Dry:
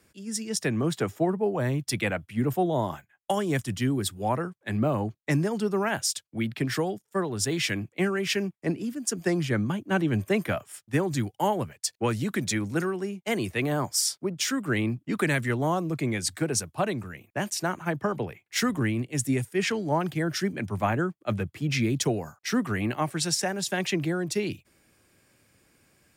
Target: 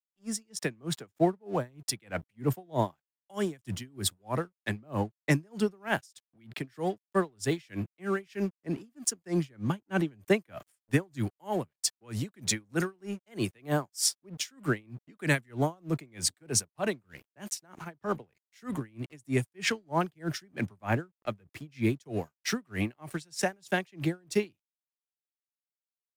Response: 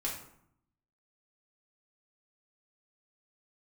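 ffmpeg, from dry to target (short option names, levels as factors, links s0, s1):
-af "aeval=exprs='sgn(val(0))*max(abs(val(0))-0.00316,0)':c=same,aeval=exprs='val(0)*pow(10,-35*(0.5-0.5*cos(2*PI*3.2*n/s))/20)':c=same,volume=1.33"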